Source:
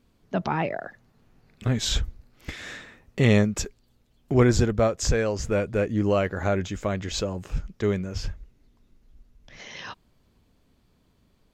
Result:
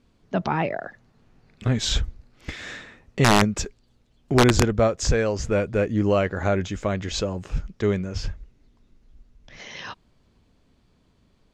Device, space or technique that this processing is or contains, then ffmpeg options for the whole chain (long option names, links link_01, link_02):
overflowing digital effects unit: -af "aeval=exprs='(mod(2.99*val(0)+1,2)-1)/2.99':channel_layout=same,lowpass=8100,volume=2dB"